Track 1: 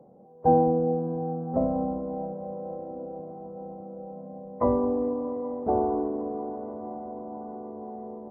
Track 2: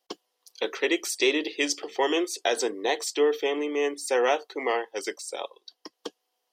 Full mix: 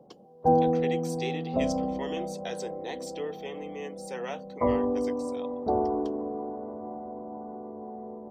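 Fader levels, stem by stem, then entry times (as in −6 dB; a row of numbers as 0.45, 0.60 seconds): −1.5, −13.0 decibels; 0.00, 0.00 seconds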